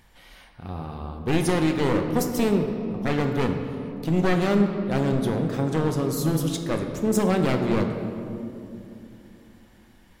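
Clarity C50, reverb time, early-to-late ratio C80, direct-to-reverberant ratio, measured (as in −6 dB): 6.0 dB, 2.7 s, 7.0 dB, 4.0 dB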